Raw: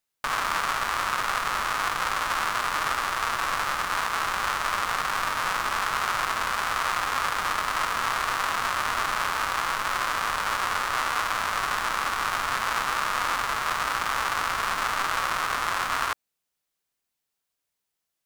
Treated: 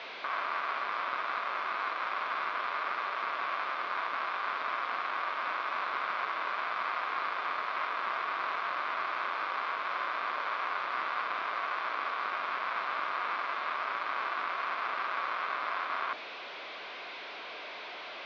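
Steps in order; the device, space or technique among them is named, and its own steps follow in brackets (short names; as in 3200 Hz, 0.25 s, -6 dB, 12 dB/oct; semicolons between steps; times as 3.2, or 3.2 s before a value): digital answering machine (BPF 390–3100 Hz; delta modulation 32 kbps, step -29.5 dBFS; speaker cabinet 490–3200 Hz, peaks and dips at 490 Hz -4 dB, 840 Hz -8 dB, 1300 Hz -6 dB, 1800 Hz -9 dB, 2900 Hz -7 dB)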